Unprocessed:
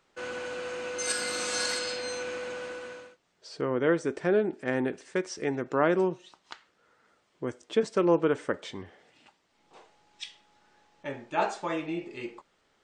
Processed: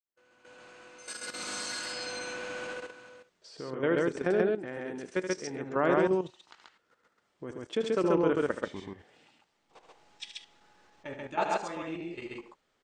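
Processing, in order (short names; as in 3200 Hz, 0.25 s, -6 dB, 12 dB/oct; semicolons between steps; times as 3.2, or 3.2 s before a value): opening faded in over 2.84 s; level quantiser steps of 13 dB; loudspeakers at several distances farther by 26 m -9 dB, 46 m -1 dB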